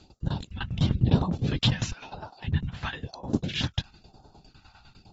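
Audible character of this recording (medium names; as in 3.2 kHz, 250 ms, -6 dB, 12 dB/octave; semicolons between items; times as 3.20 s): phasing stages 2, 1 Hz, lowest notch 370–2200 Hz; tremolo saw down 9.9 Hz, depth 90%; AAC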